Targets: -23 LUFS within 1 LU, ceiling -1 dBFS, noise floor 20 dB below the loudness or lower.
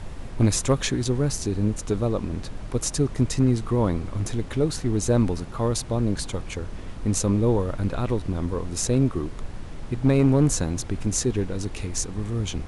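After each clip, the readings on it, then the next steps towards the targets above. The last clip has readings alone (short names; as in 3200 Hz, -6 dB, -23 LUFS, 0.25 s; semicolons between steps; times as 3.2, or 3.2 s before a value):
clipped 0.3%; flat tops at -11.5 dBFS; noise floor -36 dBFS; noise floor target -45 dBFS; loudness -25.0 LUFS; peak -11.5 dBFS; loudness target -23.0 LUFS
-> clip repair -11.5 dBFS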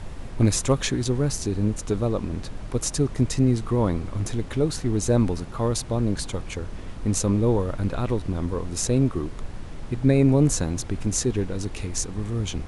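clipped 0.0%; noise floor -36 dBFS; noise floor target -45 dBFS
-> noise print and reduce 9 dB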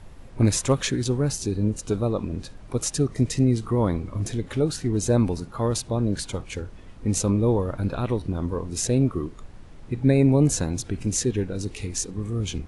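noise floor -44 dBFS; noise floor target -45 dBFS
-> noise print and reduce 6 dB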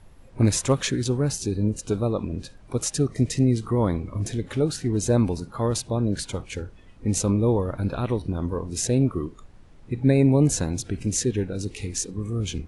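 noise floor -48 dBFS; loudness -24.5 LUFS; peak -7.5 dBFS; loudness target -23.0 LUFS
-> gain +1.5 dB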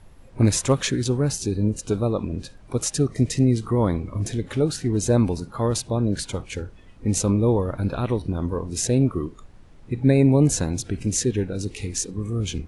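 loudness -23.0 LUFS; peak -6.0 dBFS; noise floor -47 dBFS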